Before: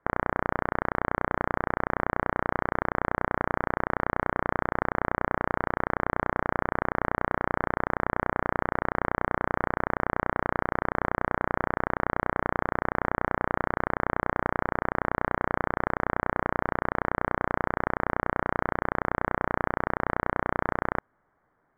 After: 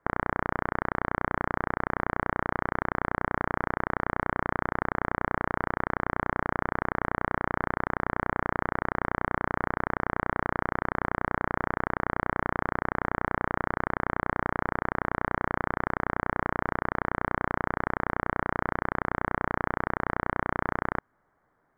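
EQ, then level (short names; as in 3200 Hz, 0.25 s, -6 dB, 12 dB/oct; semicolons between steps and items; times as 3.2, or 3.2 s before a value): dynamic EQ 550 Hz, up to -5 dB, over -42 dBFS, Q 1.9; 0.0 dB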